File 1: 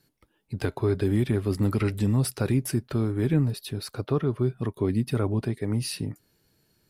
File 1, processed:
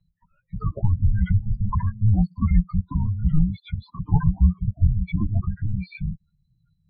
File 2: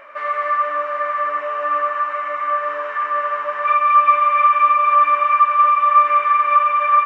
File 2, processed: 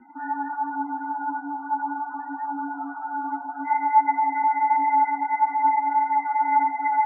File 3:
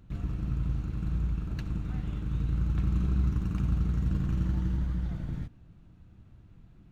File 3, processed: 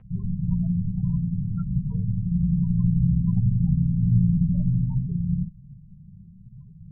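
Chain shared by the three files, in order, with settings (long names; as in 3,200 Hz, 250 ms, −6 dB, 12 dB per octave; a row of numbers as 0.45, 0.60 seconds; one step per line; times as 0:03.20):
spectral peaks only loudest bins 16
multi-voice chorus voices 6, 0.3 Hz, delay 11 ms, depth 4.3 ms
single-sideband voice off tune −310 Hz 160–3,100 Hz
loudness normalisation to −24 LKFS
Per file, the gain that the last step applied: +10.5, −5.5, +19.0 decibels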